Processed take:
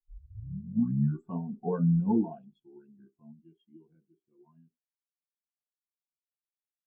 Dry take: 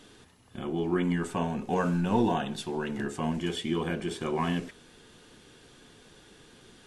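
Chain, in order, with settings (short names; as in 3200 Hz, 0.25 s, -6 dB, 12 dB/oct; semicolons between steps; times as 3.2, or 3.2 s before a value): tape start at the beginning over 1.37 s; Doppler pass-by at 1.47, 20 m/s, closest 14 m; spectral expander 2.5:1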